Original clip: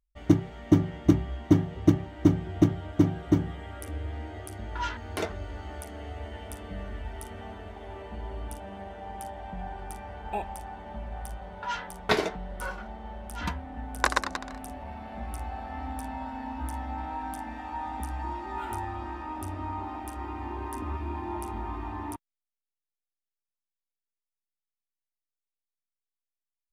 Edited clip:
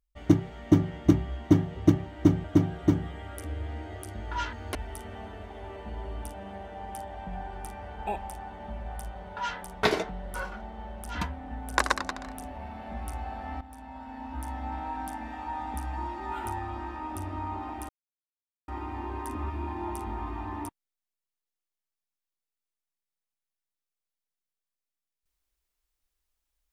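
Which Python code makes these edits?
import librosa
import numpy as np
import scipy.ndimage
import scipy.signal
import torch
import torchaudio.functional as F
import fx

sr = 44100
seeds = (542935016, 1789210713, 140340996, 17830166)

y = fx.edit(x, sr, fx.cut(start_s=2.44, length_s=0.44),
    fx.cut(start_s=5.19, length_s=1.82),
    fx.fade_in_from(start_s=15.87, length_s=1.07, floor_db=-14.0),
    fx.insert_silence(at_s=20.15, length_s=0.79), tone=tone)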